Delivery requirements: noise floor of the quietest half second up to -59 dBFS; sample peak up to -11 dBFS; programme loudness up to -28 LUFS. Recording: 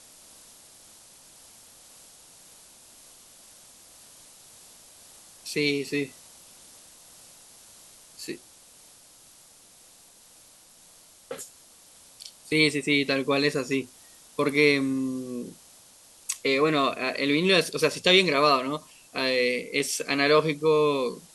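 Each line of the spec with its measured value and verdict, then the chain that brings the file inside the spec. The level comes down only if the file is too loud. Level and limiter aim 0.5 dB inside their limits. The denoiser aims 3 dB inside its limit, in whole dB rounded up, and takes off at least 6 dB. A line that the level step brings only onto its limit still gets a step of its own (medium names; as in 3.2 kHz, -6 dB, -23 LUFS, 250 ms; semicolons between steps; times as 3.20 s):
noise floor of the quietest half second -54 dBFS: fail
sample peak -6.5 dBFS: fail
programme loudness -24.0 LUFS: fail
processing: noise reduction 6 dB, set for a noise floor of -54 dBFS; trim -4.5 dB; peak limiter -11.5 dBFS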